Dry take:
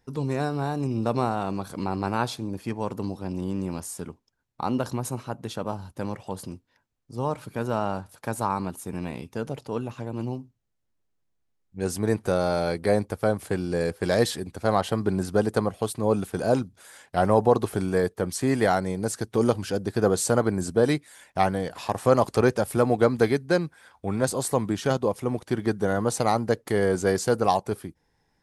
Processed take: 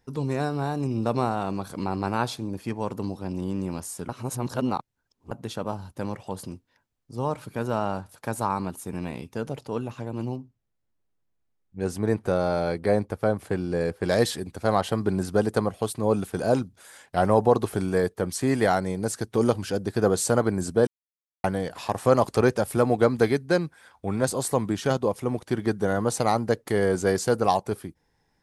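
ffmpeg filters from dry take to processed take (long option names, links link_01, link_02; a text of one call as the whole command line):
ffmpeg -i in.wav -filter_complex "[0:a]asettb=1/sr,asplit=3[link_01][link_02][link_03];[link_01]atrim=end=10.364[link_04];[link_02]atrim=start=10.36:end=14.09,asetpts=PTS-STARTPTS,afade=type=in:duration=0.004:curve=qsin,afade=type=out:start_time=3.726:duration=0.004:curve=qsin,highshelf=frequency=3700:gain=-8[link_05];[link_03]atrim=start=14.086[link_06];[link_04][link_05]acrossfade=duration=0.004:curve1=hsin:curve2=qsin[link_07];[link_07][link_06]acrossfade=duration=0.004:curve1=qsin:curve2=hsin,asplit=5[link_08][link_09][link_10][link_11][link_12];[link_08]atrim=end=4.092[link_13];[link_09]atrim=start=4.088:end=5.312,asetpts=PTS-STARTPTS,areverse[link_14];[link_10]atrim=start=5.308:end=20.87,asetpts=PTS-STARTPTS,afade=type=out:start_time=15.558:duration=0.004:curve=hsin[link_15];[link_11]atrim=start=20.87:end=21.44,asetpts=PTS-STARTPTS,volume=0[link_16];[link_12]atrim=start=21.44,asetpts=PTS-STARTPTS,afade=type=in:duration=0.004:curve=hsin[link_17];[link_13][link_14]acrossfade=duration=0.004:curve1=hsin:curve2=hsin[link_18];[link_15][link_16][link_17]concat=n=3:v=0:a=1[link_19];[link_18][link_19]acrossfade=duration=0.004:curve1=hsin:curve2=hsin" out.wav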